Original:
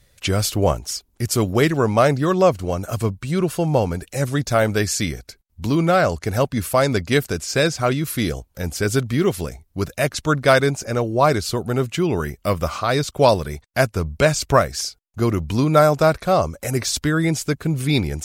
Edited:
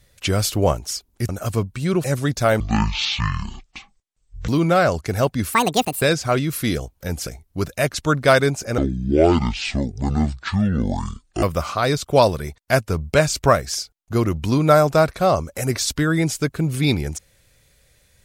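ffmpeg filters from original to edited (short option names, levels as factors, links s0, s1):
-filter_complex "[0:a]asplit=10[s0][s1][s2][s3][s4][s5][s6][s7][s8][s9];[s0]atrim=end=1.292[s10];[s1]atrim=start=2.758:end=3.512[s11];[s2]atrim=start=4.138:end=4.704[s12];[s3]atrim=start=4.7:end=5.66,asetpts=PTS-STARTPTS,asetrate=22491,aresample=44100[s13];[s4]atrim=start=5.656:end=6.714[s14];[s5]atrim=start=6.71:end=7.56,asetpts=PTS-STARTPTS,asetrate=77175,aresample=44100[s15];[s6]atrim=start=7.556:end=8.812[s16];[s7]atrim=start=9.468:end=10.984[s17];[s8]atrim=start=10.98:end=12.49,asetpts=PTS-STARTPTS,asetrate=25137,aresample=44100,atrim=end_sample=116826,asetpts=PTS-STARTPTS[s18];[s9]atrim=start=12.486[s19];[s10][s11]acrossfade=d=0.004:c1=hsin:c2=hsin[s20];[s20][s12]acrossfade=d=0.004:c1=hsin:c2=hsin[s21];[s21][s13]acrossfade=d=0.004:c1=hsin:c2=hsin[s22];[s22][s14]acrossfade=d=0.004:c1=hsin:c2=hsin[s23];[s23][s15]acrossfade=d=0.004:c1=hsin:c2=hsin[s24];[s24][s16]acrossfade=d=0.004:c1=hsin:c2=hsin[s25];[s25][s17]acrossfade=d=0.004:c1=hsin:c2=hsin[s26];[s26][s18]acrossfade=d=0.004:c1=hsin:c2=hsin[s27];[s27][s19]acrossfade=d=0.004:c1=hsin:c2=hsin"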